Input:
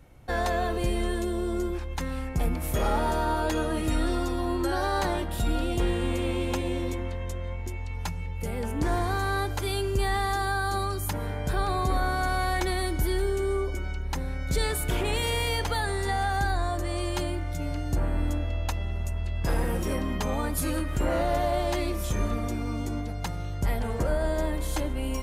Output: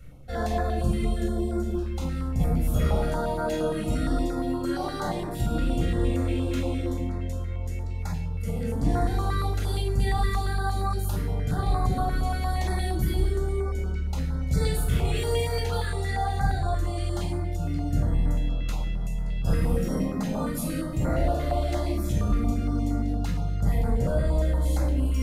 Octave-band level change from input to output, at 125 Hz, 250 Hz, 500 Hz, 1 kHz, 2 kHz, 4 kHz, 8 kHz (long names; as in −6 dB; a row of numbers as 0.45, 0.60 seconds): +4.0, +2.0, −1.0, −2.5, −5.5, −4.0, −3.5 decibels